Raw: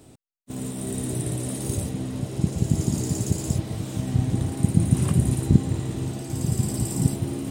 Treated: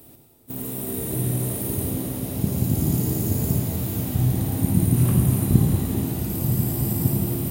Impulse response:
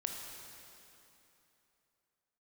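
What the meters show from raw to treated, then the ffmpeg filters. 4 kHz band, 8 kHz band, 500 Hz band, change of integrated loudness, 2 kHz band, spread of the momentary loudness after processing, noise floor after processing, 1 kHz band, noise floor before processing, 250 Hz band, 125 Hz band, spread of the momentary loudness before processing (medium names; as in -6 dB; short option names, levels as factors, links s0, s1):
-0.5 dB, +1.0 dB, +2.0 dB, +2.5 dB, +1.0 dB, 8 LU, -48 dBFS, +2.0 dB, -51 dBFS, +1.5 dB, +2.0 dB, 9 LU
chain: -filter_complex "[0:a]bandreject=f=51.71:t=h:w=4,bandreject=f=103.42:t=h:w=4,bandreject=f=155.13:t=h:w=4,aexciter=amount=12:drive=5.8:freq=11000,acrossover=split=3200[s0][s1];[s1]acompressor=threshold=0.0398:ratio=4:attack=1:release=60[s2];[s0][s2]amix=inputs=2:normalize=0[s3];[1:a]atrim=start_sample=2205,asetrate=32193,aresample=44100[s4];[s3][s4]afir=irnorm=-1:irlink=0,volume=0.891"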